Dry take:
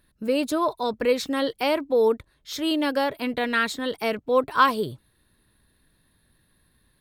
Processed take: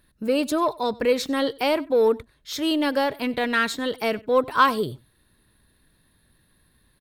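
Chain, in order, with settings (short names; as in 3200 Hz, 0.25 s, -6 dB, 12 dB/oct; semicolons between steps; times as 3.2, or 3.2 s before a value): in parallel at -11.5 dB: soft clip -24 dBFS, distortion -8 dB; on the sum: echo 95 ms -23 dB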